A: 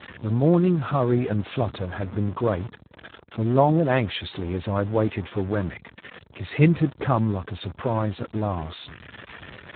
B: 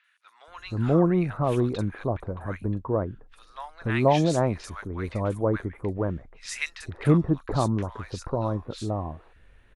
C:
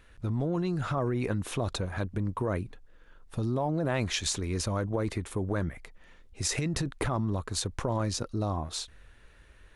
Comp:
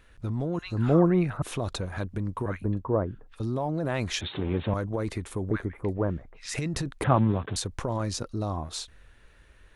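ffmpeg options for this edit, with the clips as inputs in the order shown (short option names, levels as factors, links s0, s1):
-filter_complex "[1:a]asplit=3[s0][s1][s2];[0:a]asplit=2[s3][s4];[2:a]asplit=6[s5][s6][s7][s8][s9][s10];[s5]atrim=end=0.592[s11];[s0]atrim=start=0.588:end=1.422[s12];[s6]atrim=start=1.418:end=2.462[s13];[s1]atrim=start=2.458:end=3.402[s14];[s7]atrim=start=3.398:end=4.212[s15];[s3]atrim=start=4.208:end=4.742[s16];[s8]atrim=start=4.738:end=5.512[s17];[s2]atrim=start=5.508:end=6.542[s18];[s9]atrim=start=6.538:end=7.042[s19];[s4]atrim=start=7.038:end=7.562[s20];[s10]atrim=start=7.558[s21];[s11][s12]acrossfade=d=0.004:c1=hsin:c2=hsin[s22];[s22][s13]acrossfade=d=0.004:c1=hsin:c2=hsin[s23];[s23][s14]acrossfade=d=0.004:c1=hsin:c2=hsin[s24];[s24][s15]acrossfade=d=0.004:c1=hsin:c2=hsin[s25];[s25][s16]acrossfade=d=0.004:c1=hsin:c2=hsin[s26];[s26][s17]acrossfade=d=0.004:c1=hsin:c2=hsin[s27];[s27][s18]acrossfade=d=0.004:c1=hsin:c2=hsin[s28];[s28][s19]acrossfade=d=0.004:c1=hsin:c2=hsin[s29];[s29][s20]acrossfade=d=0.004:c1=hsin:c2=hsin[s30];[s30][s21]acrossfade=d=0.004:c1=hsin:c2=hsin"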